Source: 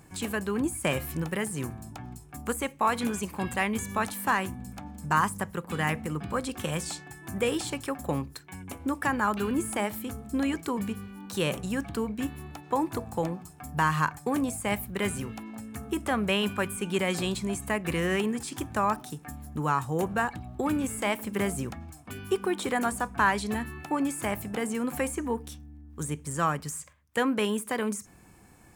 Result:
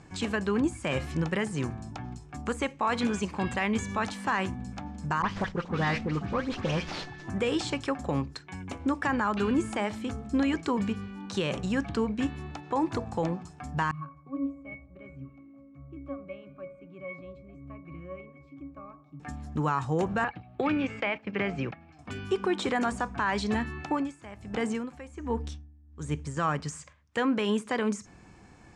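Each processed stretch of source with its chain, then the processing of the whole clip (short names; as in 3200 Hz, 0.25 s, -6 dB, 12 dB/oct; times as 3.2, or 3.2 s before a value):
5.22–7.3 dispersion highs, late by 92 ms, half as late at 2600 Hz + running maximum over 5 samples
13.91–19.2 bell 79 Hz -9 dB 0.59 oct + octave resonator C#, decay 0.31 s + band-limited delay 83 ms, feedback 63%, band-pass 560 Hz, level -16 dB
20.24–21.99 gate -37 dBFS, range -14 dB + speaker cabinet 120–4100 Hz, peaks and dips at 230 Hz -8 dB, 380 Hz -3 dB, 990 Hz -5 dB, 2400 Hz +6 dB, 3700 Hz -5 dB + three-band squash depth 70%
23.88–26.37 bell 67 Hz +8 dB 0.93 oct + dB-linear tremolo 1.3 Hz, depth 18 dB
whole clip: LPF 6500 Hz 24 dB/oct; limiter -20.5 dBFS; gain +2.5 dB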